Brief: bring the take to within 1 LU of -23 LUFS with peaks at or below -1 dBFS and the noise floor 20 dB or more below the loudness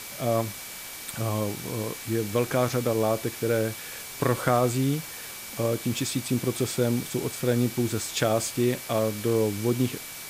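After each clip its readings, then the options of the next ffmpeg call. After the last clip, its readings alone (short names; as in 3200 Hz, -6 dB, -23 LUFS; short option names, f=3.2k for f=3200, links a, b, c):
steady tone 2300 Hz; tone level -47 dBFS; noise floor -39 dBFS; noise floor target -47 dBFS; loudness -27.0 LUFS; peak -9.0 dBFS; loudness target -23.0 LUFS
-> -af "bandreject=f=2.3k:w=30"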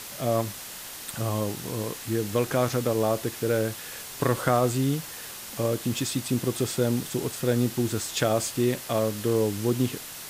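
steady tone none; noise floor -40 dBFS; noise floor target -47 dBFS
-> -af "afftdn=nr=7:nf=-40"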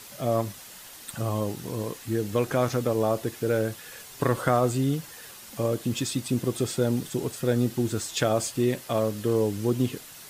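noise floor -45 dBFS; noise floor target -47 dBFS
-> -af "afftdn=nr=6:nf=-45"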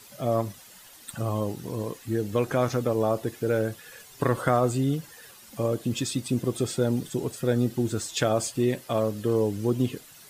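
noise floor -50 dBFS; loudness -27.5 LUFS; peak -9.5 dBFS; loudness target -23.0 LUFS
-> -af "volume=4.5dB"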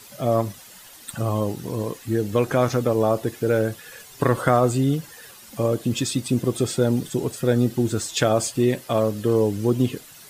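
loudness -23.0 LUFS; peak -5.0 dBFS; noise floor -46 dBFS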